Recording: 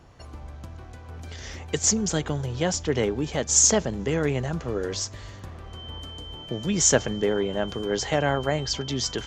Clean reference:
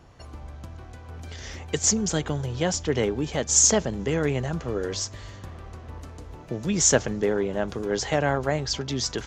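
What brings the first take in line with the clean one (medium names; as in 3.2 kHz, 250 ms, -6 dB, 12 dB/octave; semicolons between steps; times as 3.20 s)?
band-stop 3.1 kHz, Q 30; interpolate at 5.39 s, 1.7 ms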